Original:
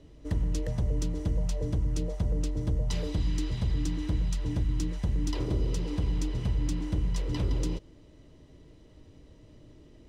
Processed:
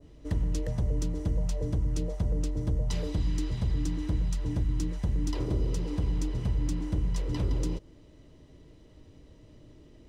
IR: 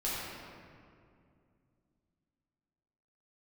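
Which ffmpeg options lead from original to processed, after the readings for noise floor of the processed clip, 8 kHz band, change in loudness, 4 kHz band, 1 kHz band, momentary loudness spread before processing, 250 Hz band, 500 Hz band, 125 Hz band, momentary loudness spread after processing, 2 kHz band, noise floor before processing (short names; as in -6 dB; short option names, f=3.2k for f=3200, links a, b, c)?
-54 dBFS, -1.0 dB, 0.0 dB, -2.5 dB, -0.5 dB, 1 LU, 0.0 dB, 0.0 dB, 0.0 dB, 1 LU, -2.0 dB, -54 dBFS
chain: -af "adynamicequalizer=threshold=0.00178:dfrequency=3200:dqfactor=0.88:tfrequency=3200:tqfactor=0.88:attack=5:release=100:ratio=0.375:range=2:mode=cutabove:tftype=bell"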